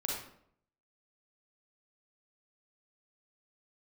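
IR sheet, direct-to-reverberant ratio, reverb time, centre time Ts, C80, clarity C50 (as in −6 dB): −3.0 dB, 0.65 s, 52 ms, 5.0 dB, 0.0 dB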